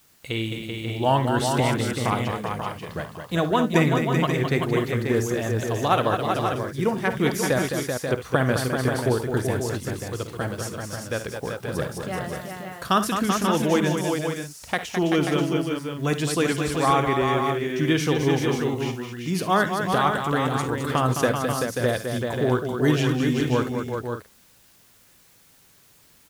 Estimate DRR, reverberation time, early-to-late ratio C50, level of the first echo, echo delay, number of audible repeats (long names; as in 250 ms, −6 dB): no reverb audible, no reverb audible, no reverb audible, −13.0 dB, 53 ms, 5